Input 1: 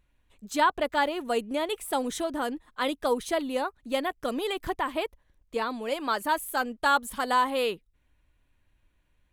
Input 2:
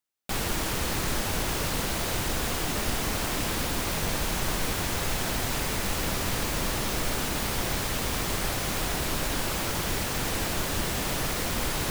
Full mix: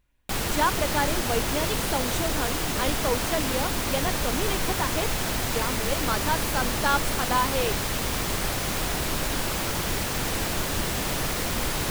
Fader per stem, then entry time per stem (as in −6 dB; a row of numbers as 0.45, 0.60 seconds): −1.0, +1.5 decibels; 0.00, 0.00 seconds